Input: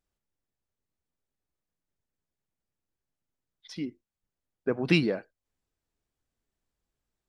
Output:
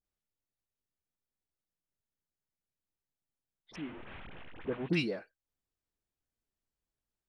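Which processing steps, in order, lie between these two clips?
3.71–4.85 delta modulation 16 kbps, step -33 dBFS; dispersion highs, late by 48 ms, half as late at 1100 Hz; gain -7.5 dB

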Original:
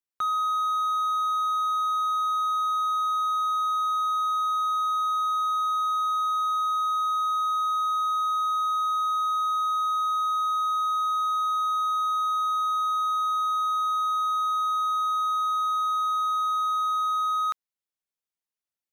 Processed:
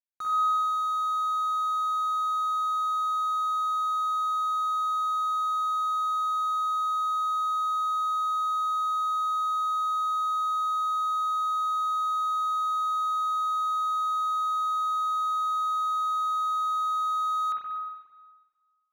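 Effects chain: median filter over 41 samples; spring tank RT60 1.4 s, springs 44/59 ms, chirp 60 ms, DRR -4 dB; decimation joined by straight lines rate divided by 2×; gain +4.5 dB

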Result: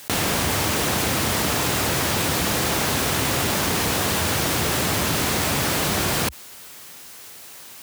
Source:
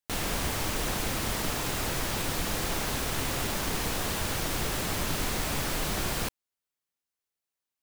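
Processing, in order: HPF 71 Hz 24 dB/oct; fast leveller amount 70%; gain +8 dB

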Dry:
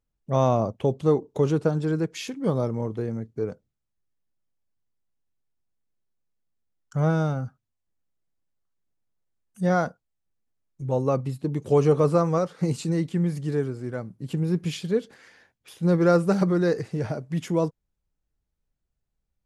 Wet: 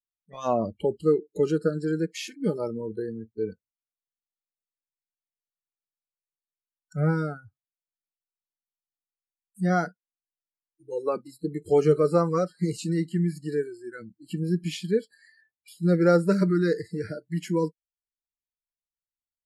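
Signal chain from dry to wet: spectral noise reduction 30 dB

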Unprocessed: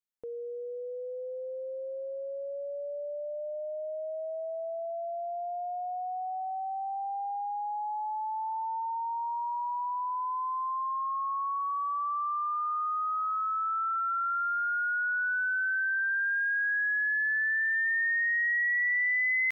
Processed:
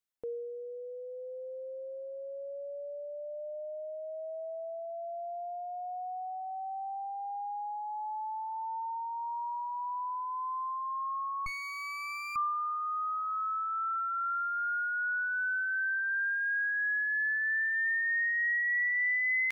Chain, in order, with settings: 11.46–12.36 minimum comb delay 0.32 ms; reverb removal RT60 1.6 s; gain +2 dB

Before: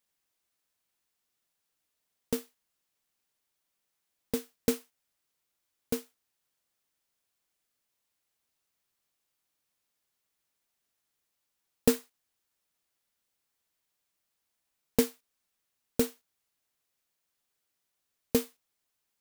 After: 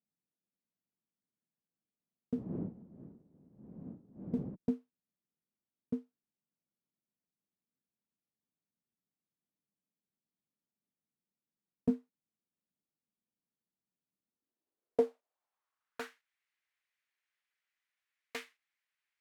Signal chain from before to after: 2.33–4.54 wind noise 410 Hz -43 dBFS; one-sided clip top -25 dBFS; band-pass sweep 200 Hz -> 2000 Hz, 14.17–16.24; gain +4 dB

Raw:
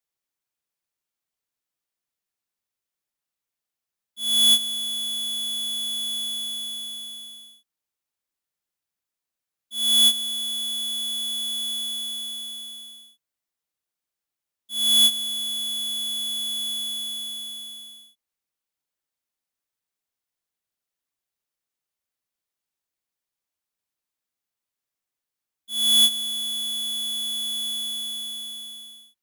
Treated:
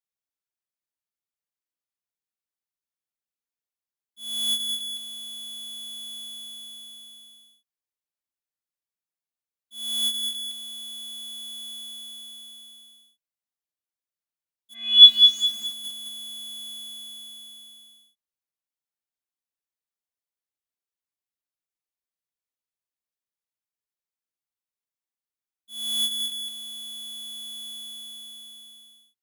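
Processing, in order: 14.73–15.45 synth low-pass 1900 Hz -> 7600 Hz, resonance Q 11; lo-fi delay 0.205 s, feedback 35%, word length 5-bit, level -5.5 dB; gain -9.5 dB

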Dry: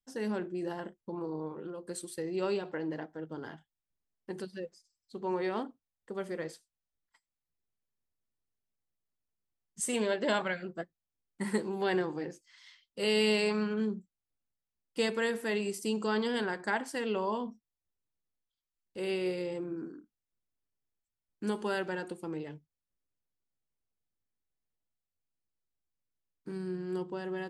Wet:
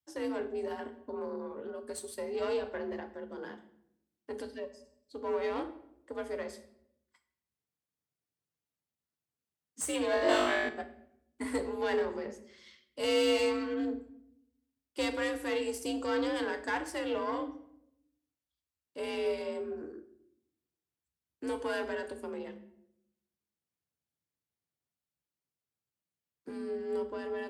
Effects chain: added harmonics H 4 -20 dB, 8 -34 dB, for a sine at -16.5 dBFS; in parallel at -6.5 dB: hard clip -30.5 dBFS, distortion -10 dB; on the sum: frequency shift +57 Hz; 10.11–10.69 flutter echo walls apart 3.4 m, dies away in 0.96 s; shoebox room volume 170 m³, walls mixed, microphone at 0.38 m; gain -4.5 dB

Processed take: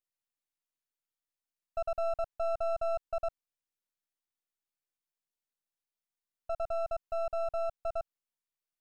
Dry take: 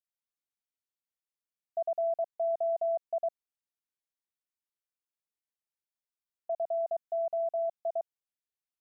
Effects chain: half-wave gain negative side -12 dB; gain +1.5 dB

